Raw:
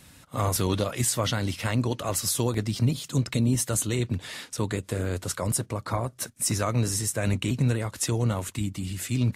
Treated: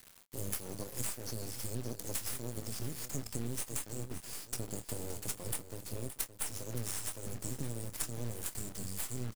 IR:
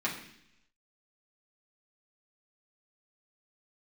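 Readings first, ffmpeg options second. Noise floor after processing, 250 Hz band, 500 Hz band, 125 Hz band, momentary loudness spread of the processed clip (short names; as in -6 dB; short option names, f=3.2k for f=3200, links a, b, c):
-56 dBFS, -16.0 dB, -14.5 dB, -16.5 dB, 5 LU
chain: -filter_complex "[0:a]aemphasis=mode=production:type=50fm,afftfilt=real='re*(1-between(b*sr/4096,540,4300))':imag='im*(1-between(b*sr/4096,540,4300))':win_size=4096:overlap=0.75,adynamicequalizer=threshold=0.00794:dfrequency=2500:dqfactor=1.8:tfrequency=2500:tqfactor=1.8:attack=5:release=100:ratio=0.375:range=2:mode=boostabove:tftype=bell,acompressor=threshold=-27dB:ratio=16,aeval=exprs='val(0)+0.000631*(sin(2*PI*60*n/s)+sin(2*PI*2*60*n/s)/2+sin(2*PI*3*60*n/s)/3+sin(2*PI*4*60*n/s)/4+sin(2*PI*5*60*n/s)/5)':c=same,aeval=exprs='sgn(val(0))*max(abs(val(0))-0.00266,0)':c=same,acrusher=bits=4:dc=4:mix=0:aa=0.000001,asplit=2[a][b];[b]adelay=26,volume=-12.5dB[c];[a][c]amix=inputs=2:normalize=0,aecho=1:1:570:0.251,volume=-4.5dB"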